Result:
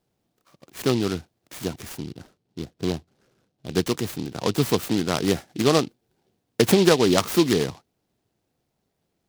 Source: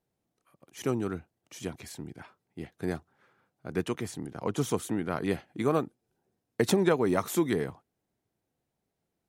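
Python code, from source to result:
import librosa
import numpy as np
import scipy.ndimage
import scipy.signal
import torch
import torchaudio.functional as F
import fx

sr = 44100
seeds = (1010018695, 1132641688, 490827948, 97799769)

y = fx.median_filter(x, sr, points=41, at=(2.06, 3.7))
y = fx.noise_mod_delay(y, sr, seeds[0], noise_hz=3500.0, depth_ms=0.09)
y = y * librosa.db_to_amplitude(7.5)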